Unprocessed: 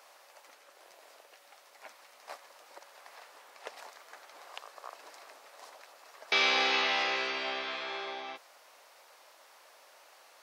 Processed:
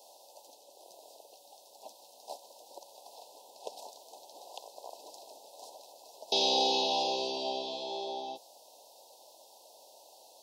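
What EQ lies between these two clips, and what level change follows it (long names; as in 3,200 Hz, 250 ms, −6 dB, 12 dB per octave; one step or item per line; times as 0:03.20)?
Chebyshev band-stop filter 1,000–2,600 Hz, order 5
flat-topped bell 1,800 Hz −14 dB
+5.0 dB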